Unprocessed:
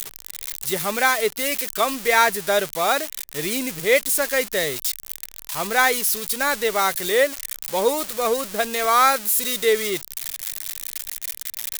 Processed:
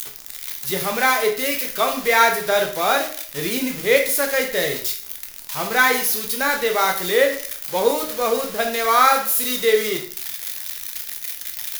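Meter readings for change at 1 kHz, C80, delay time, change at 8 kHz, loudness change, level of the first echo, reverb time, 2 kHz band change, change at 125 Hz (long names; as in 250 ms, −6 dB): +1.5 dB, 12.5 dB, no echo audible, −1.0 dB, +1.5 dB, no echo audible, 0.50 s, +2.0 dB, +2.5 dB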